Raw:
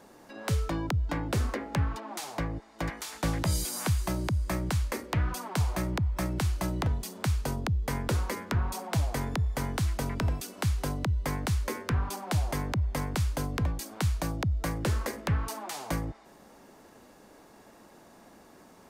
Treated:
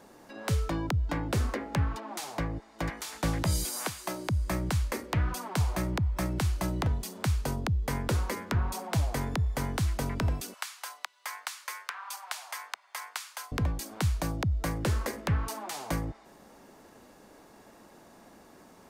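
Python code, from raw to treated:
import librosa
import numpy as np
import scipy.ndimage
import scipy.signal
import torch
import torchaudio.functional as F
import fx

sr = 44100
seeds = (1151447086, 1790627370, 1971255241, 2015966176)

y = fx.highpass(x, sr, hz=320.0, slope=12, at=(3.7, 4.29))
y = fx.highpass(y, sr, hz=950.0, slope=24, at=(10.54, 13.52))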